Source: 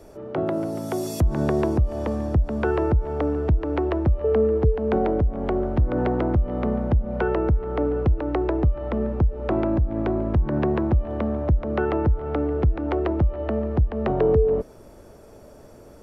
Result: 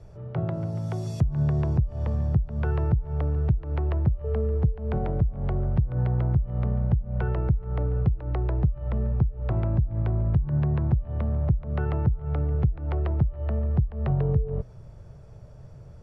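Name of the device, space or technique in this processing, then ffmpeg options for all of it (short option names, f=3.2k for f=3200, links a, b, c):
jukebox: -af "lowpass=6.1k,lowshelf=f=190:t=q:w=3:g=11.5,acompressor=threshold=-12dB:ratio=6,volume=-7.5dB"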